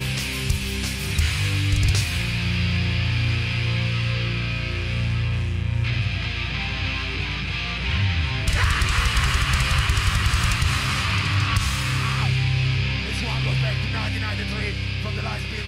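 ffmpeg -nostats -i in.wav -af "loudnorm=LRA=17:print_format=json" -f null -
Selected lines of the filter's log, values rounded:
"input_i" : "-23.2",
"input_tp" : "-7.9",
"input_lra" : "3.8",
"input_thresh" : "-33.2",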